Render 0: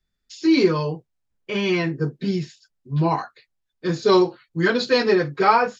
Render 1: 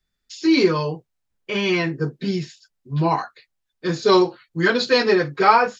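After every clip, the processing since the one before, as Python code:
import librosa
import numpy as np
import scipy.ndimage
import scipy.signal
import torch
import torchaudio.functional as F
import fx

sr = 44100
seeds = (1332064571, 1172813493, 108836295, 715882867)

y = fx.low_shelf(x, sr, hz=500.0, db=-4.0)
y = y * 10.0 ** (3.0 / 20.0)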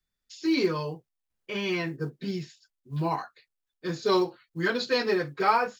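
y = fx.quant_companded(x, sr, bits=8)
y = y * 10.0 ** (-8.5 / 20.0)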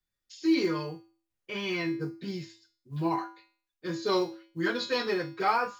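y = fx.comb_fb(x, sr, f0_hz=110.0, decay_s=0.43, harmonics='odd', damping=0.0, mix_pct=80)
y = y * 10.0 ** (8.5 / 20.0)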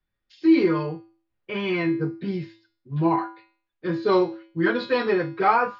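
y = fx.air_absorb(x, sr, metres=350.0)
y = y * 10.0 ** (8.5 / 20.0)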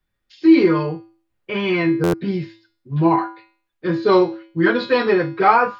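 y = fx.buffer_glitch(x, sr, at_s=(2.03,), block=512, repeats=8)
y = y * 10.0 ** (5.5 / 20.0)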